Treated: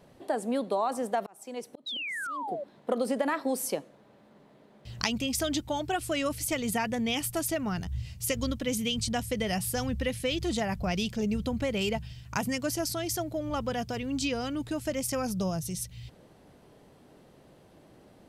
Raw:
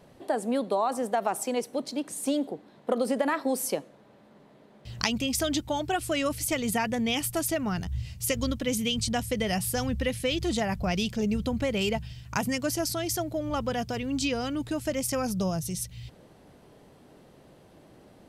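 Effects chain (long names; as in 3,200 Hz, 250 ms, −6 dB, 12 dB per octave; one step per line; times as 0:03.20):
0:01.15–0:02.48: volume swells 683 ms
0:01.86–0:02.64: sound drawn into the spectrogram fall 540–4,000 Hz −33 dBFS
level −2 dB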